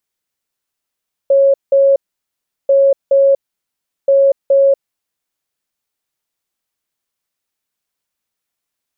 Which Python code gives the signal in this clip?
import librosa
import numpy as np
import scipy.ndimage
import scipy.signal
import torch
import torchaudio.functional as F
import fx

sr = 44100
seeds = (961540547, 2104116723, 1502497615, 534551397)

y = fx.beep_pattern(sr, wave='sine', hz=550.0, on_s=0.24, off_s=0.18, beeps=2, pause_s=0.73, groups=3, level_db=-6.5)